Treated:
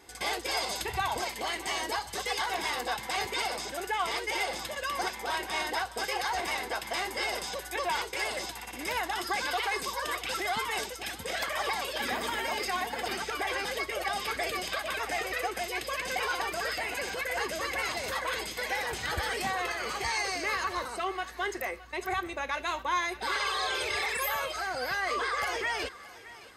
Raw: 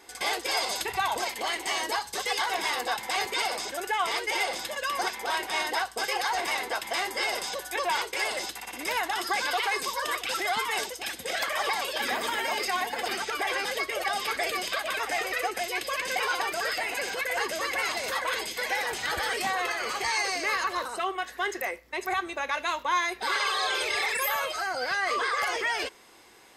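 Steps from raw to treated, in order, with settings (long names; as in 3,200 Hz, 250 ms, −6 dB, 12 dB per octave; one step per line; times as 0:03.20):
parametric band 71 Hz +13 dB 2.7 octaves
on a send: feedback echo with a high-pass in the loop 618 ms, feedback 37%, level −17 dB
on the sum: level −3.5 dB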